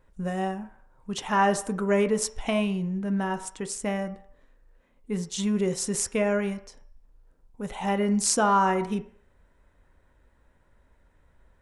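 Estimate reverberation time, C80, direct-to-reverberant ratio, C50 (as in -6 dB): 0.55 s, 17.0 dB, 8.0 dB, 13.5 dB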